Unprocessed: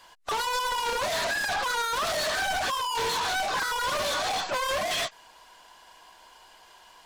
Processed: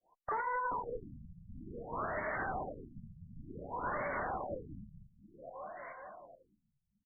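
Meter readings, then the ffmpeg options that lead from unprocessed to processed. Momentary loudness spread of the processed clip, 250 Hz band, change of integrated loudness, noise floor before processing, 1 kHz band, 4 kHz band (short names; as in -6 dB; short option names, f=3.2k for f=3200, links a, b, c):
17 LU, -2.0 dB, -12.5 dB, -55 dBFS, -10.5 dB, under -40 dB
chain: -af "agate=range=-33dB:threshold=-43dB:ratio=3:detection=peak,lowshelf=f=120:g=-9.5,acompressor=threshold=-48dB:ratio=1.5,aecho=1:1:428|856|1284|1712|2140|2568|2996:0.447|0.255|0.145|0.0827|0.0472|0.0269|0.0153,aeval=exprs='(mod(31.6*val(0)+1,2)-1)/31.6':c=same,afftfilt=real='re*lt(b*sr/1024,200*pow(2300/200,0.5+0.5*sin(2*PI*0.55*pts/sr)))':imag='im*lt(b*sr/1024,200*pow(2300/200,0.5+0.5*sin(2*PI*0.55*pts/sr)))':win_size=1024:overlap=0.75,volume=1.5dB"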